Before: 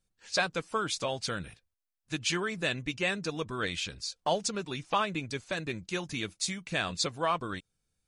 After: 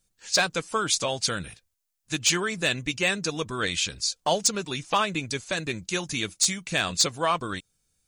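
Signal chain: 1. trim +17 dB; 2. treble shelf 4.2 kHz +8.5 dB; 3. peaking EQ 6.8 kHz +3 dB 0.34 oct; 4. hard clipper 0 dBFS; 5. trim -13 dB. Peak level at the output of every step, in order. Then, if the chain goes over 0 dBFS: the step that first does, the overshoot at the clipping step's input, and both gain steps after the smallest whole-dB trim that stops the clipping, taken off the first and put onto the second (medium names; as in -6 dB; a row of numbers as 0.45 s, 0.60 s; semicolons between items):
+4.5 dBFS, +6.5 dBFS, +7.0 dBFS, 0.0 dBFS, -13.0 dBFS; step 1, 7.0 dB; step 1 +10 dB, step 5 -6 dB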